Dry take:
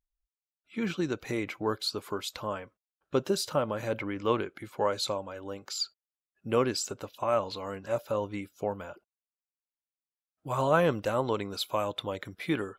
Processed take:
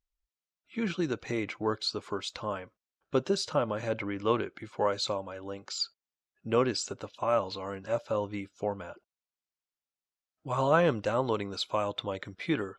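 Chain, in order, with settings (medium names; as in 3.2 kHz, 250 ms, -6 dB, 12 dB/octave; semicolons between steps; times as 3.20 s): low-pass 7.3 kHz 24 dB/octave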